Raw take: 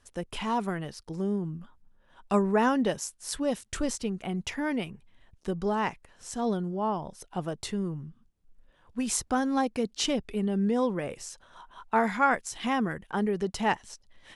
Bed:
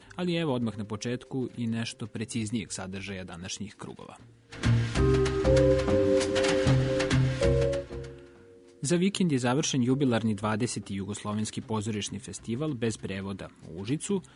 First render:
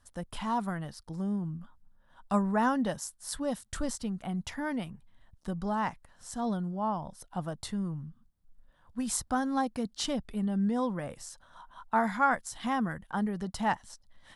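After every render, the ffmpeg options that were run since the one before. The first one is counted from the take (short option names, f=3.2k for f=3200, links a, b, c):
-af "equalizer=f=400:t=o:w=0.67:g=-12,equalizer=f=2.5k:t=o:w=0.67:g=-10,equalizer=f=6.3k:t=o:w=0.67:g=-5"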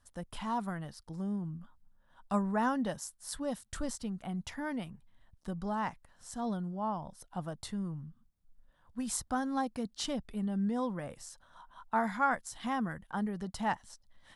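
-af "volume=-3.5dB"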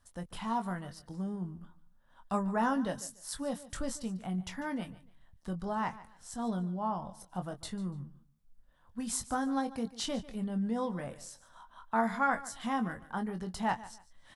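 -filter_complex "[0:a]asplit=2[a][b];[b]adelay=22,volume=-7.5dB[c];[a][c]amix=inputs=2:normalize=0,aecho=1:1:146|292:0.133|0.0333"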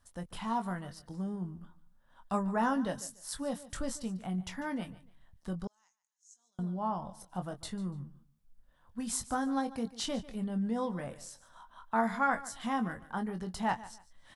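-filter_complex "[0:a]asettb=1/sr,asplit=3[a][b][c];[a]atrim=end=5.674[d];[b]atrim=start=5.67:end=6.59,asetpts=PTS-STARTPTS,afade=t=in:d=0.004:c=qsin,afade=t=out:st=0.916:d=0.004:c=qsin,bandpass=f=6.6k:t=q:w=14[e];[c]atrim=start=6.586[f];[d][e]acrossfade=d=0.004:c1=hsin:c2=qsin[g];[g][f]acrossfade=d=0.004:c1=qsin:c2=hsin"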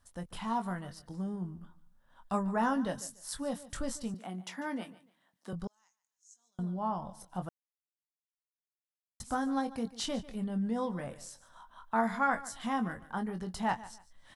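-filter_complex "[0:a]asettb=1/sr,asplit=3[a][b][c];[a]atrim=end=4.144[d];[b]atrim=start=4.14:end=5.53,asetpts=PTS-STARTPTS,afade=t=in:d=0.004:c=qsin,afade=t=out:st=1.386:d=0.004:c=qsin,highpass=f=220:w=0.5412,highpass=f=220:w=1.3066[e];[c]atrim=start=5.526[f];[d][e]acrossfade=d=0.004:c1=hsin:c2=qsin[g];[g][f]acrossfade=d=0.004:c1=qsin:c2=hsin,asplit=3[h][i][j];[h]atrim=end=7.49,asetpts=PTS-STARTPTS,afade=t=out:st=7.486:d=0.004:c=hsin[k];[i]atrim=start=7.49:end=9.2,asetpts=PTS-STARTPTS,volume=0[l];[j]atrim=start=9.2,asetpts=PTS-STARTPTS,afade=t=in:d=0.004:c=hsin[m];[k][l][m]concat=n=3:v=0:a=1"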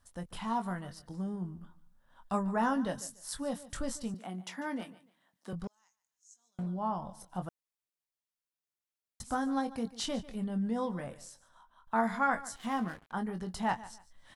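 -filter_complex "[0:a]asettb=1/sr,asplit=3[a][b][c];[a]atrim=end=4.764[d];[b]atrim=start=4.76:end=6.67,asetpts=PTS-STARTPTS,afade=t=in:d=0.004:c=qsin,afade=t=out:st=1.906:d=0.004:c=qsin,asoftclip=type=hard:threshold=-32dB[e];[c]atrim=start=6.666[f];[d][e]acrossfade=d=0.004:c1=hsin:c2=qsin[g];[g][f]acrossfade=d=0.004:c1=qsin:c2=hsin,asettb=1/sr,asplit=3[h][i][j];[h]atrim=end=12.564[k];[i]atrim=start=12.56:end=13.12,asetpts=PTS-STARTPTS,afade=t=in:d=0.004:c=qsin,afade=t=out:st=0.556:d=0.004:c=qsin,aeval=exprs='sgn(val(0))*max(abs(val(0))-0.00335,0)':c=same[l];[j]atrim=start=13.116[m];[k][l]acrossfade=d=0.004:c1=hsin:c2=qsin[n];[n][m]acrossfade=d=0.004:c1=qsin:c2=hsin,asplit=2[o][p];[o]atrim=end=11.87,asetpts=PTS-STARTPTS,afade=t=out:st=10.93:d=0.94:silence=0.266073[q];[p]atrim=start=11.87,asetpts=PTS-STARTPTS,afade=t=in:d=0.004:c=hsin:silence=0.266073[r];[q][r]concat=n=2:v=0:a=1"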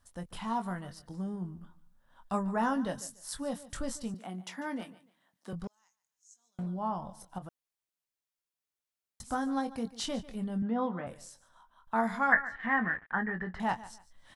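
-filter_complex "[0:a]asettb=1/sr,asplit=3[a][b][c];[a]atrim=end=7.384[d];[b]atrim=start=7.38:end=9.25,asetpts=PTS-STARTPTS,afade=t=in:d=0.004:c=qsin,afade=t=out:st=1.866:d=0.004:c=qsin,acompressor=threshold=-40dB:ratio=5:attack=3.2:release=140:knee=1:detection=peak[e];[c]atrim=start=9.246[f];[d][e]acrossfade=d=0.004:c1=hsin:c2=qsin[g];[g][f]acrossfade=d=0.004:c1=qsin:c2=hsin,asettb=1/sr,asplit=3[h][i][j];[h]atrim=end=10.624[k];[i]atrim=start=10.62:end=11.07,asetpts=PTS-STARTPTS,afade=t=in:d=0.004:c=qsin,afade=t=out:st=0.446:d=0.004:c=qsin,highpass=140,equalizer=f=260:t=q:w=4:g=4,equalizer=f=730:t=q:w=4:g=5,equalizer=f=1.3k:t=q:w=4:g=8,lowpass=f=3.5k:w=0.5412,lowpass=f=3.5k:w=1.3066[l];[j]atrim=start=11.066[m];[k][l]acrossfade=d=0.004:c1=hsin:c2=qsin[n];[n][m]acrossfade=d=0.004:c1=qsin:c2=hsin,asettb=1/sr,asplit=3[o][p][q];[o]atrim=end=12.324[r];[p]atrim=start=12.32:end=13.6,asetpts=PTS-STARTPTS,afade=t=in:d=0.004:c=qsin,afade=t=out:st=1.276:d=0.004:c=qsin,lowpass=f=1.8k:t=q:w=13[s];[q]atrim=start=13.596[t];[r][s]acrossfade=d=0.004:c1=hsin:c2=qsin[u];[u][t]acrossfade=d=0.004:c1=qsin:c2=hsin"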